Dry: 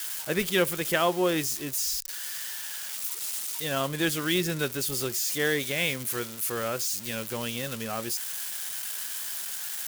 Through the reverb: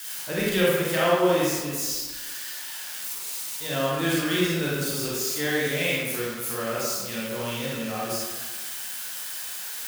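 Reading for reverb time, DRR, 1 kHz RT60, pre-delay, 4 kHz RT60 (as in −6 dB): 1.4 s, −6.5 dB, 1.5 s, 28 ms, 0.85 s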